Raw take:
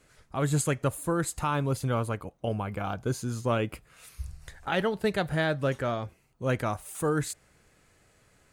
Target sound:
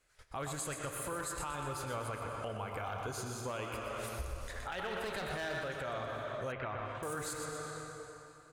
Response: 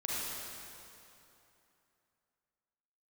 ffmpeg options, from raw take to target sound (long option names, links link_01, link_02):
-filter_complex "[0:a]agate=range=-15dB:threshold=-55dB:ratio=16:detection=peak,asplit=2[link_01][link_02];[1:a]atrim=start_sample=2205,lowpass=7700,adelay=28[link_03];[link_02][link_03]afir=irnorm=-1:irlink=0,volume=-11dB[link_04];[link_01][link_04]amix=inputs=2:normalize=0,asettb=1/sr,asplit=3[link_05][link_06][link_07];[link_05]atrim=end=4.914[link_08];[link_06]atrim=start=4.91:end=5.6,asetpts=PTS-STARTPTS,afade=type=in:duration=0.004:curve=qsin,afade=type=out:start_time=0.686:duration=0.004:curve=qsin,acontrast=44[link_09];[link_07]atrim=start=5.596[link_10];[link_08][link_09]acrossfade=duration=0.004:curve1=hsin:curve2=qsin[link_11];[link_11][link_10]acrossfade=duration=0.004:curve1=qsin:curve2=hsin,asoftclip=type=hard:threshold=-19dB,acompressor=threshold=-38dB:ratio=4,equalizer=frequency=190:width_type=o:width=2.2:gain=-12,aecho=1:1:122|244|366|488|610:0.376|0.177|0.083|0.039|0.0183,alimiter=level_in=10.5dB:limit=-24dB:level=0:latency=1:release=21,volume=-10.5dB,asettb=1/sr,asplit=3[link_12][link_13][link_14];[link_12]atrim=end=6.524[link_15];[link_13]atrim=start=6.52:end=7.03,asetpts=PTS-STARTPTS,afade=type=in:duration=0.004:curve=qsin,afade=type=out:start_time=0.506:duration=0.004:curve=qsin,lowpass=frequency=3300:width=0.5412,lowpass=frequency=3300:width=1.3066[link_16];[link_14]atrim=start=7.026[link_17];[link_15][link_16]acrossfade=duration=0.004:curve1=hsin:curve2=qsin[link_18];[link_18][link_17]acrossfade=duration=0.004:curve1=qsin:curve2=hsin,volume=5dB"